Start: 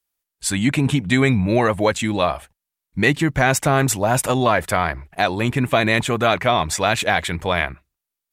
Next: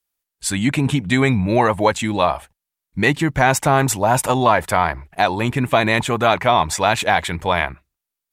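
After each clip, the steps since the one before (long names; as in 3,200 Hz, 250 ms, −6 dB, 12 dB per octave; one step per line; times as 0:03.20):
dynamic equaliser 900 Hz, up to +8 dB, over −36 dBFS, Q 3.1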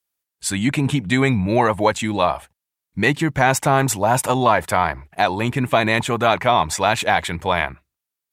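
high-pass filter 63 Hz
level −1 dB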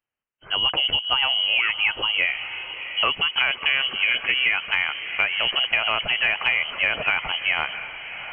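voice inversion scrambler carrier 3,100 Hz
feedback delay with all-pass diffusion 691 ms, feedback 44%, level −15 dB
downward compressor 5 to 1, threshold −18 dBFS, peak gain reduction 7.5 dB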